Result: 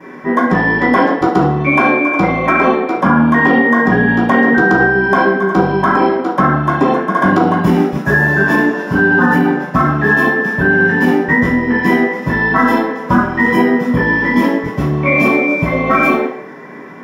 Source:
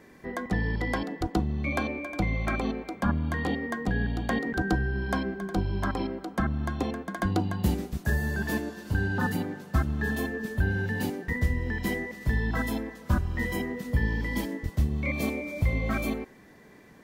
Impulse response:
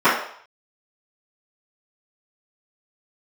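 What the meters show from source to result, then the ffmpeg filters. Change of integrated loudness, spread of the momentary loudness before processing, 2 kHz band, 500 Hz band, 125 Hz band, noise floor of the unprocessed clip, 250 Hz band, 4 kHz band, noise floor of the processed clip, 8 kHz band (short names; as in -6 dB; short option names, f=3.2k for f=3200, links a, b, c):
+17.0 dB, 4 LU, +20.5 dB, +19.5 dB, +10.0 dB, -53 dBFS, +17.5 dB, +10.5 dB, -30 dBFS, n/a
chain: -filter_complex "[1:a]atrim=start_sample=2205[a];[0:a][a]afir=irnorm=-1:irlink=0,alimiter=level_in=-2.5dB:limit=-1dB:release=50:level=0:latency=1,volume=-1dB"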